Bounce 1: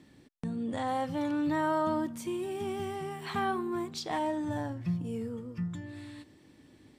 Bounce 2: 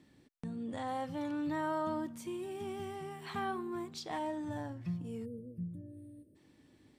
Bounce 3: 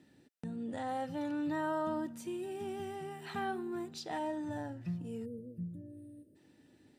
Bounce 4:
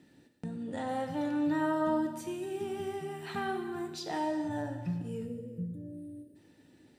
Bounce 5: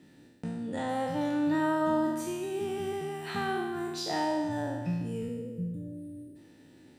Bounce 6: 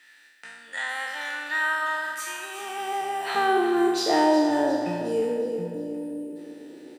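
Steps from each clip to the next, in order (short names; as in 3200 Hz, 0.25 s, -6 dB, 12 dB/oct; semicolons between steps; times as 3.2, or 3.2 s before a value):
spectral gain 5.25–6.36, 650–8400 Hz -29 dB; gain -6 dB
notch comb 1100 Hz; gain +1 dB
non-linear reverb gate 0.48 s falling, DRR 5 dB; gain +2.5 dB
spectral trails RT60 1.17 s; gain +1.5 dB
high-pass sweep 1700 Hz -> 380 Hz, 2.14–3.77; on a send: feedback echo 0.361 s, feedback 45%, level -11 dB; on the sum: gain +7.5 dB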